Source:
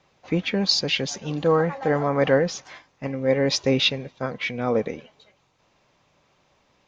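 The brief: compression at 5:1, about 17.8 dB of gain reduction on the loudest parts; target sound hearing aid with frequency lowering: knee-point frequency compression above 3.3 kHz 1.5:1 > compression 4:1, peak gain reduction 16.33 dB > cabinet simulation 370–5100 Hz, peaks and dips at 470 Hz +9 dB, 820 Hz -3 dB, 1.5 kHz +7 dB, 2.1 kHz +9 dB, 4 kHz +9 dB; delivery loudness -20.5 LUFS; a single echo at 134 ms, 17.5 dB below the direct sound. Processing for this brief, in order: compression 5:1, threshold -36 dBFS; delay 134 ms -17.5 dB; knee-point frequency compression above 3.3 kHz 1.5:1; compression 4:1, threshold -51 dBFS; cabinet simulation 370–5100 Hz, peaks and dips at 470 Hz +9 dB, 820 Hz -3 dB, 1.5 kHz +7 dB, 2.1 kHz +9 dB, 4 kHz +9 dB; trim +27.5 dB

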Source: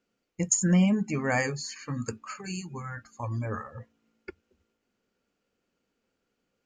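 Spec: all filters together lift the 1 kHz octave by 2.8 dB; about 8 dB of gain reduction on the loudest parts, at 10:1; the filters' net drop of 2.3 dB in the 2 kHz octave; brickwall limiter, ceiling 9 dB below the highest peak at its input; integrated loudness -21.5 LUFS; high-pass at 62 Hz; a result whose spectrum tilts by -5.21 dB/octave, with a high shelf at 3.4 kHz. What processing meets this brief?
high-pass 62 Hz; peaking EQ 1 kHz +5 dB; peaking EQ 2 kHz -3 dB; treble shelf 3.4 kHz -5 dB; compression 10:1, threshold -26 dBFS; trim +15.5 dB; peak limiter -11.5 dBFS

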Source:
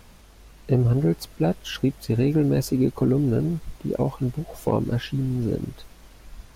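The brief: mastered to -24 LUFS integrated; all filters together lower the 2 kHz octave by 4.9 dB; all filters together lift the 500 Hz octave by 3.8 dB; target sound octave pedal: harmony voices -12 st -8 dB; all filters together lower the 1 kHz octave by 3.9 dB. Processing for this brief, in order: peaking EQ 500 Hz +6.5 dB; peaking EQ 1 kHz -8 dB; peaking EQ 2 kHz -4.5 dB; harmony voices -12 st -8 dB; trim -1.5 dB

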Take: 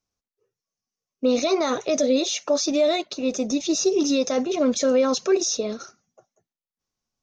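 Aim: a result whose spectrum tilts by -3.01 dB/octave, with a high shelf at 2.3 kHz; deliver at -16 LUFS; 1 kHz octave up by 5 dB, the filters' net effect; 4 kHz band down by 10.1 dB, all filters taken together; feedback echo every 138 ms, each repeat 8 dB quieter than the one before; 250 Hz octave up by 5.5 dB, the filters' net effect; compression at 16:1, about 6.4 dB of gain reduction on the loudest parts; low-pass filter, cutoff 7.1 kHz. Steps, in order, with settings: low-pass 7.1 kHz; peaking EQ 250 Hz +6 dB; peaking EQ 1 kHz +8 dB; treble shelf 2.3 kHz -5 dB; peaking EQ 4 kHz -7.5 dB; compression 16:1, threshold -18 dBFS; feedback delay 138 ms, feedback 40%, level -8 dB; trim +7.5 dB

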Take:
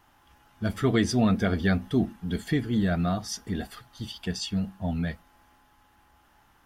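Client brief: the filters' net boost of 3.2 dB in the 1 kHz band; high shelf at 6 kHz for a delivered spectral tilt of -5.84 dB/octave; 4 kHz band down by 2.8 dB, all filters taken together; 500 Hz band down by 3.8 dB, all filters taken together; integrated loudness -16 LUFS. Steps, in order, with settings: peaking EQ 500 Hz -8 dB; peaking EQ 1 kHz +8.5 dB; peaking EQ 4 kHz -7.5 dB; treble shelf 6 kHz +8.5 dB; trim +12.5 dB

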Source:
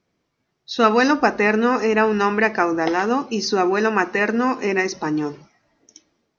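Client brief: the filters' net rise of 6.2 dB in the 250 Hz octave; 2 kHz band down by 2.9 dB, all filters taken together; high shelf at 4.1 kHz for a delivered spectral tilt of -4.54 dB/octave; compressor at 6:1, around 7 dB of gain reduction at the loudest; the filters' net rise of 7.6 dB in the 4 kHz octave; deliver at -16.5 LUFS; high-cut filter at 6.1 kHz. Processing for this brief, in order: low-pass 6.1 kHz; peaking EQ 250 Hz +7.5 dB; peaking EQ 2 kHz -7 dB; peaking EQ 4 kHz +7.5 dB; treble shelf 4.1 kHz +7.5 dB; compression 6:1, threshold -16 dBFS; trim +4 dB

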